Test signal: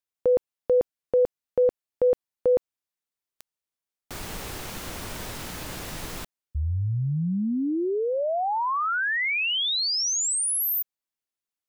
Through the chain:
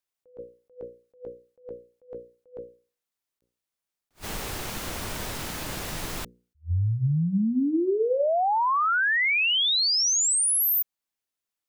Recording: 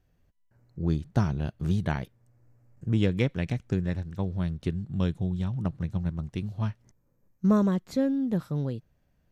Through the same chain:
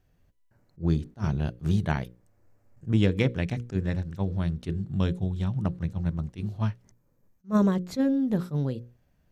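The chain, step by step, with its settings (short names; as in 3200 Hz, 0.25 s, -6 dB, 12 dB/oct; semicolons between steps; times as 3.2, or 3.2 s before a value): notches 60/120/180/240/300/360/420/480/540 Hz; attack slew limiter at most 350 dB/s; gain +2.5 dB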